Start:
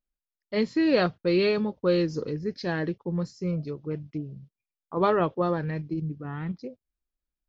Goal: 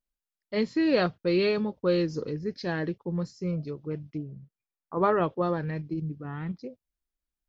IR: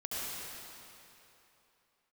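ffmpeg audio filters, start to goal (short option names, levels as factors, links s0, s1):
-filter_complex "[0:a]asettb=1/sr,asplit=3[s0][s1][s2];[s0]atrim=end=4.234[s3];[s1]atrim=start=4.23:end=5.17,asetpts=PTS-STARTPTS,afade=t=in:d=0.004:c=qsin,afade=t=out:st=0.936:d=0.004:c=qsin,highshelf=f=2400:t=q:w=1.5:g=-7.5[s4];[s2]atrim=start=5.166[s5];[s3][s4]acrossfade=d=0.004:c1=hsin:c2=qsin[s6];[s6][s5]acrossfade=d=0.004:c1=qsin:c2=hsin,volume=0.841"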